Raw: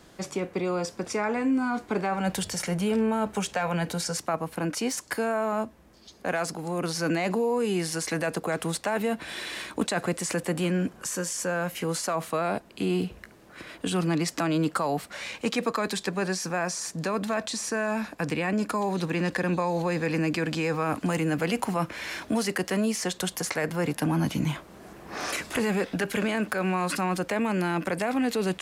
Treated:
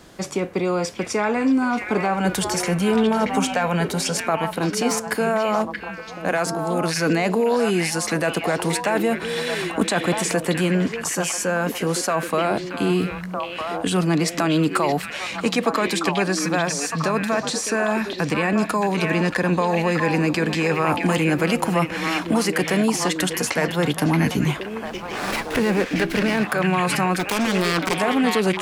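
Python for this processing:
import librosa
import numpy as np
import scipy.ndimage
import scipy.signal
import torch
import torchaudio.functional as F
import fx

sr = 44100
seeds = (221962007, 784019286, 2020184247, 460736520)

y = fx.self_delay(x, sr, depth_ms=0.74, at=(27.19, 27.97))
y = fx.echo_stepped(y, sr, ms=629, hz=2500.0, octaves=-1.4, feedback_pct=70, wet_db=-0.5)
y = fx.running_max(y, sr, window=5, at=(24.85, 26.44))
y = y * 10.0 ** (6.0 / 20.0)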